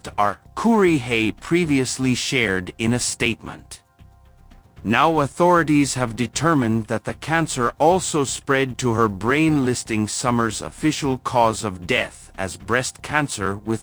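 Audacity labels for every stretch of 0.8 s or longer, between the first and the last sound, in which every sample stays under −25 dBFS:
3.740000	4.850000	silence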